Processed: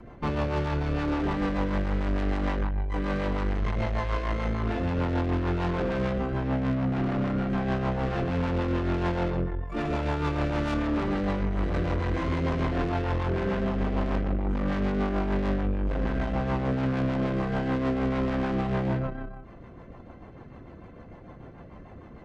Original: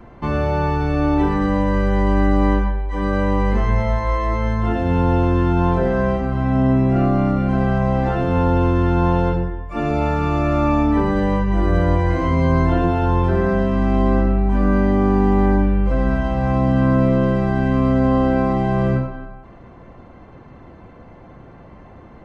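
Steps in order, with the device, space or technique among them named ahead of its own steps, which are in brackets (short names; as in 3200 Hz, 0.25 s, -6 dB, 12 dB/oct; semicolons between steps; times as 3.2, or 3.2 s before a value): overdriven rotary cabinet (tube stage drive 24 dB, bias 0.6; rotary speaker horn 6.7 Hz); gain +1 dB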